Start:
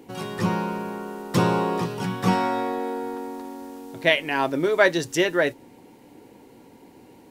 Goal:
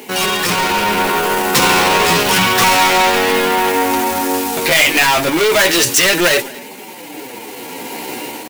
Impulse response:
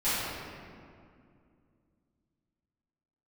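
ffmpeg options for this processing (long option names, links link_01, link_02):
-filter_complex "[0:a]asplit=2[link_01][link_02];[link_02]highpass=frequency=720:poles=1,volume=37dB,asoftclip=type=tanh:threshold=-4.5dB[link_03];[link_01][link_03]amix=inputs=2:normalize=0,lowpass=frequency=3800:poles=1,volume=-6dB,agate=range=-6dB:threshold=-22dB:ratio=16:detection=peak,asplit=2[link_04][link_05];[link_05]acrusher=bits=3:mode=log:mix=0:aa=0.000001,volume=-8dB[link_06];[link_04][link_06]amix=inputs=2:normalize=0,flanger=delay=4.7:depth=8.9:regen=-14:speed=0.35:shape=sinusoidal,asplit=2[link_07][link_08];[link_08]aecho=0:1:197:0.0794[link_09];[link_07][link_09]amix=inputs=2:normalize=0,dynaudnorm=framelen=540:gausssize=3:maxgain=12dB,aemphasis=mode=production:type=75kf,atempo=0.86,equalizer=frequency=2500:width_type=o:width=0.67:gain=4,volume=-6dB"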